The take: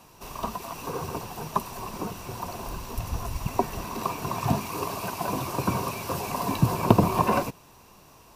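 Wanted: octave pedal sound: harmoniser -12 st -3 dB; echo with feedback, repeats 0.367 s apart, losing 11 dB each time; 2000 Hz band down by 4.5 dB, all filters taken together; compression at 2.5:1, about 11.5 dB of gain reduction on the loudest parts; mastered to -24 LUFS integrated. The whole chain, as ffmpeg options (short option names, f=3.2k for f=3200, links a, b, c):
-filter_complex "[0:a]equalizer=f=2k:t=o:g=-6.5,acompressor=threshold=-31dB:ratio=2.5,aecho=1:1:367|734|1101:0.282|0.0789|0.0221,asplit=2[a][b];[b]asetrate=22050,aresample=44100,atempo=2,volume=-3dB[c];[a][c]amix=inputs=2:normalize=0,volume=9.5dB"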